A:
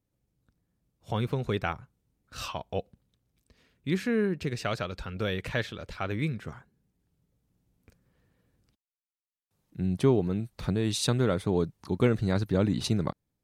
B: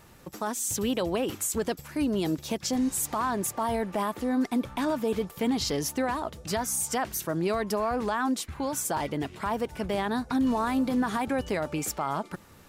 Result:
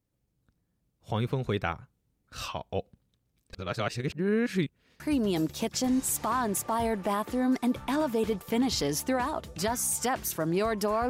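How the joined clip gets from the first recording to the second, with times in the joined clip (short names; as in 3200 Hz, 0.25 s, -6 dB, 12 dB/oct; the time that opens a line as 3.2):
A
3.53–5 reverse
5 switch to B from 1.89 s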